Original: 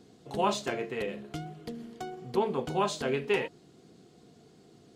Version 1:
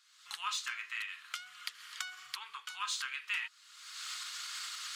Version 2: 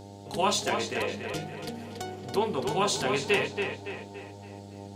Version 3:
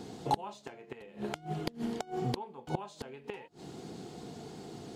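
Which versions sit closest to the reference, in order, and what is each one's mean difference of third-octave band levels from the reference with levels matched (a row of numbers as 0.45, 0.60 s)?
2, 3, 1; 7.5, 12.0, 19.5 dB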